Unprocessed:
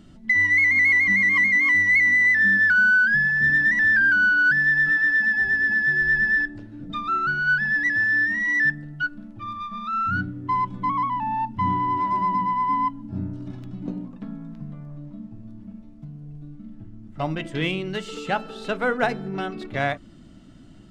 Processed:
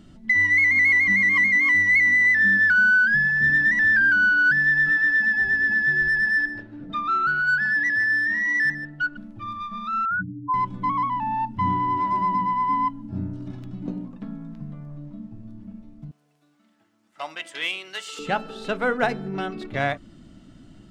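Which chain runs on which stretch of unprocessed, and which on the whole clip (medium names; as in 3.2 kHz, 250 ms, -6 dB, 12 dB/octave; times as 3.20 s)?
6.08–9.17 s: overdrive pedal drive 11 dB, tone 1.5 kHz, clips at -13 dBFS + delay 152 ms -13.5 dB
10.05–10.54 s: spectral contrast enhancement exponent 3.3 + high-pass 110 Hz + hum notches 50/100/150/200/250/300/350/400/450 Hz
16.11–18.19 s: high-pass 890 Hz + treble shelf 5.1 kHz +8 dB
whole clip: none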